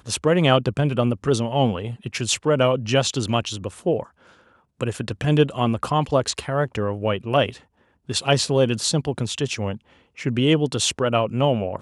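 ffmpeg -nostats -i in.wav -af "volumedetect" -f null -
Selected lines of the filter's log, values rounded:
mean_volume: -22.2 dB
max_volume: -3.1 dB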